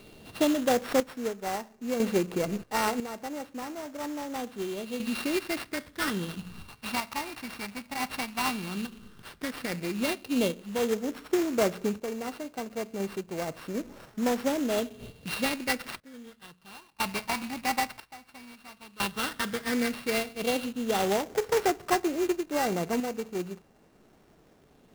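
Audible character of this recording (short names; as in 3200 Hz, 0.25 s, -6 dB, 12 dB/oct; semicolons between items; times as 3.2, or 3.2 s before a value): a buzz of ramps at a fixed pitch in blocks of 16 samples; phasing stages 8, 0.098 Hz, lowest notch 450–4300 Hz; random-step tremolo 1 Hz, depth 90%; aliases and images of a low sample rate 6900 Hz, jitter 20%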